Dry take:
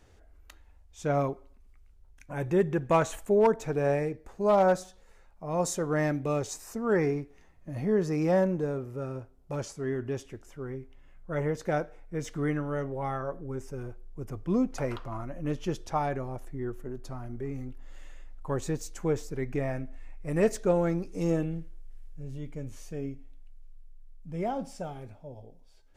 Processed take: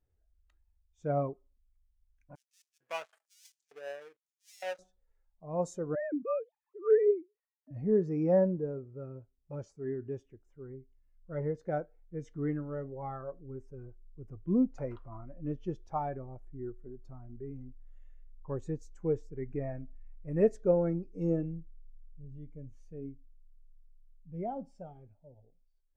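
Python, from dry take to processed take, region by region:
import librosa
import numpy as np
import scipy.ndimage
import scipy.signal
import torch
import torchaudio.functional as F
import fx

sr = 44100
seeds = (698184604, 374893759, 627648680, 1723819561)

y = fx.chain(x, sr, fx.dead_time(dead_ms=0.29),
    fx.peak_eq(hz=340.0, db=-10.5, octaves=2.5),
    fx.filter_lfo_highpass(shape='square', hz=1.1, low_hz=460.0, high_hz=5900.0, q=0.93), at=(2.35, 4.79))
y = fx.chain(y, sr, fx.sine_speech(),
    fx.high_shelf(hz=2700.0, db=-11.5), at=(5.95, 7.71))
y = fx.high_shelf(y, sr, hz=9400.0, db=-6.5)
y = fx.spectral_expand(y, sr, expansion=1.5)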